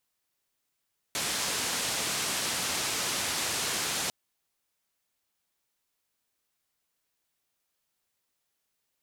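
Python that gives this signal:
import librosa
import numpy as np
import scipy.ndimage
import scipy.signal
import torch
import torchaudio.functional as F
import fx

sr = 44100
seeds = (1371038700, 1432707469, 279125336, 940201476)

y = fx.band_noise(sr, seeds[0], length_s=2.95, low_hz=83.0, high_hz=8600.0, level_db=-31.0)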